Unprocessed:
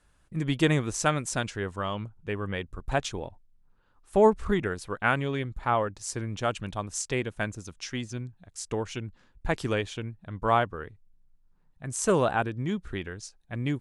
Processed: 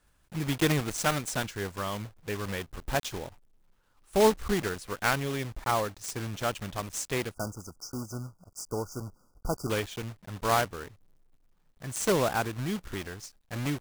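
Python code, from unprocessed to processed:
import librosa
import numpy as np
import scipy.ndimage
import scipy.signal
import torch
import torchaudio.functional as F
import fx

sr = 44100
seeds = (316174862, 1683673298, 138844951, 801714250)

y = fx.block_float(x, sr, bits=3)
y = fx.brickwall_bandstop(y, sr, low_hz=1500.0, high_hz=4600.0, at=(7.34, 9.7))
y = y * 10.0 ** (-2.5 / 20.0)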